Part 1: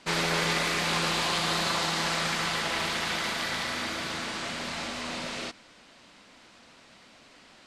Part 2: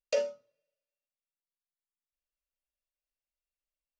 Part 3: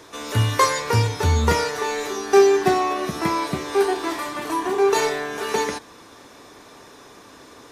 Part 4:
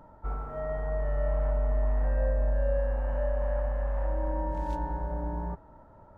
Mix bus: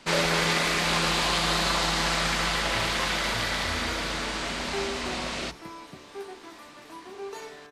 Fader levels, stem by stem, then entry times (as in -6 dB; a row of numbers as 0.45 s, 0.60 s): +2.5 dB, -2.0 dB, -20.0 dB, -12.0 dB; 0.00 s, 0.00 s, 2.40 s, 0.00 s